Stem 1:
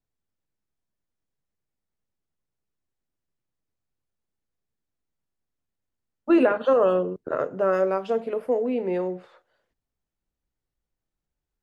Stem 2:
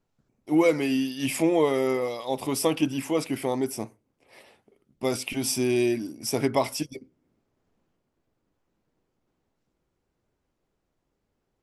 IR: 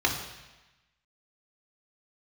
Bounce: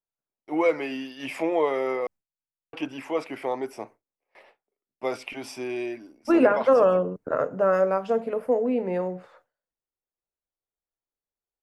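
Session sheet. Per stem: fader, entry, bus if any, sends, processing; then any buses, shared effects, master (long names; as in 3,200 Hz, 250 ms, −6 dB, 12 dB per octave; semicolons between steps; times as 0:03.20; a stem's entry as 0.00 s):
+2.0 dB, 0.00 s, no send, parametric band 370 Hz −7.5 dB 0.29 octaves
+2.5 dB, 0.00 s, muted 0:02.07–0:02.73, no send, three-way crossover with the lows and the highs turned down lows −17 dB, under 410 Hz, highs −21 dB, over 4,000 Hz; automatic ducking −6 dB, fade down 1.05 s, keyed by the first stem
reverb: not used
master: noise gate with hold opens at −43 dBFS; parametric band 3,500 Hz −6.5 dB 1 octave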